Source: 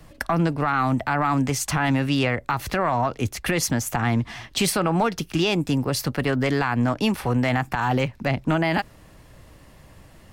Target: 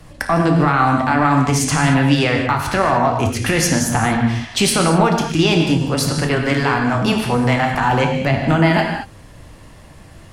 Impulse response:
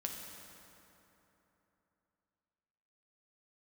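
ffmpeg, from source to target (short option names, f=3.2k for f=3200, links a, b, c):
-filter_complex "[0:a]asettb=1/sr,asplit=3[a][b][c];[a]atrim=end=5.774[d];[b]atrim=start=5.77:end=7.79,asetpts=PTS-STARTPTS,afade=t=in:d=0.004:c=qsin,afade=t=out:st=2.016:d=0.004:c=qsin,acrossover=split=270[e][f];[f]adelay=40[g];[e][g]amix=inputs=2:normalize=0,atrim=end_sample=89082[h];[c]atrim=start=7.786[i];[d][h]acrossfade=d=0.004:c1=hsin:c2=qsin[j];[j][i]acrossfade=d=0.004:c1=qsin:c2=hsin[k];[1:a]atrim=start_sample=2205,afade=t=out:st=0.17:d=0.01,atrim=end_sample=7938,asetrate=22491,aresample=44100[l];[k][l]afir=irnorm=-1:irlink=0,volume=4dB"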